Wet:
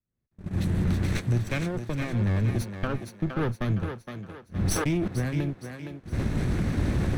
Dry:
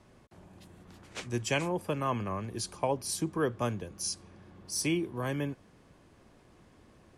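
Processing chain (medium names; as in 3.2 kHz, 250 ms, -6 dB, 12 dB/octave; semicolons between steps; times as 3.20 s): comb filter that takes the minimum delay 0.5 ms; recorder AGC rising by 38 dB/s; tone controls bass +11 dB, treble -4 dB; saturation -16 dBFS, distortion -21 dB; 2.80–3.70 s: graphic EQ with 31 bands 1.25 kHz +7 dB, 3.15 kHz +5 dB, 8 kHz -11 dB; gate -27 dBFS, range -38 dB; thinning echo 465 ms, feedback 43%, high-pass 270 Hz, level -6 dB; 4.56–5.08 s: decay stretcher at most 21 dB/s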